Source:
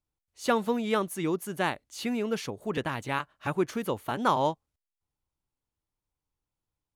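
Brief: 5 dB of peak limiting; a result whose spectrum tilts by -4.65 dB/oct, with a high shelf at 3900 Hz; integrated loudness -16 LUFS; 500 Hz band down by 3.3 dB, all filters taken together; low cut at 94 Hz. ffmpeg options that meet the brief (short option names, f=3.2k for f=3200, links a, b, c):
-af "highpass=94,equalizer=f=500:t=o:g=-4,highshelf=f=3.9k:g=-7.5,volume=17.5dB,alimiter=limit=-2dB:level=0:latency=1"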